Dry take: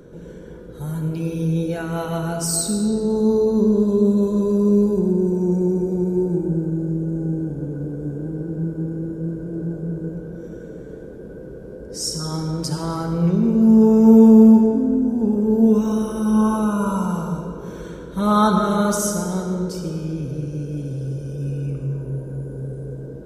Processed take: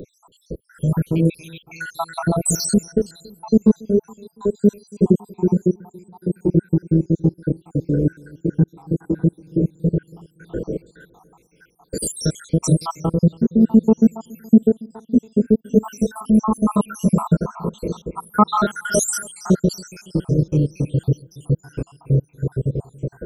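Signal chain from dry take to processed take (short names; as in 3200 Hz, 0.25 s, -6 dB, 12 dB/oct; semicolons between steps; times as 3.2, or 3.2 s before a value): random spectral dropouts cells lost 82%; vocal rider within 4 dB 0.5 s; darkening echo 0.28 s, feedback 57%, low-pass 1300 Hz, level -24 dB; gain +7 dB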